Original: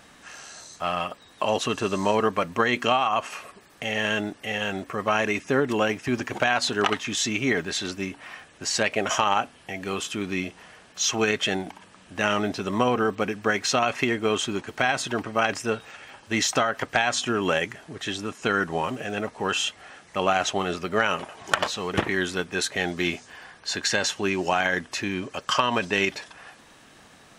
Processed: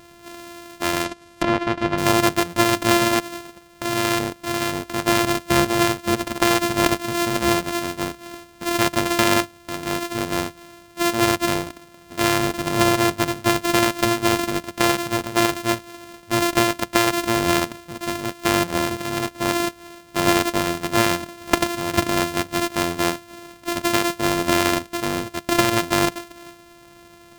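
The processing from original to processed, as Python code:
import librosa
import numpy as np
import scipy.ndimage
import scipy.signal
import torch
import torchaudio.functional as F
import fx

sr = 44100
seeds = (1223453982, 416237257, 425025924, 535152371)

y = np.r_[np.sort(x[:len(x) // 128 * 128].reshape(-1, 128), axis=1).ravel(), x[len(x) // 128 * 128:]]
y = fx.env_lowpass_down(y, sr, base_hz=2800.0, full_db=-23.0, at=(1.04, 1.98))
y = y * 10.0 ** (4.5 / 20.0)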